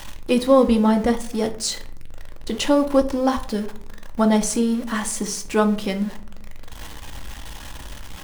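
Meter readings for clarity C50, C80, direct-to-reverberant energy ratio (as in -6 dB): 13.0 dB, 18.0 dB, 6.0 dB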